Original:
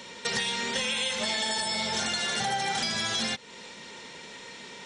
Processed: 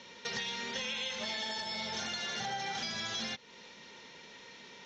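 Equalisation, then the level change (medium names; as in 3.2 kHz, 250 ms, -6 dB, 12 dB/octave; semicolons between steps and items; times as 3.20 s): elliptic low-pass 6.4 kHz, stop band 40 dB; -7.5 dB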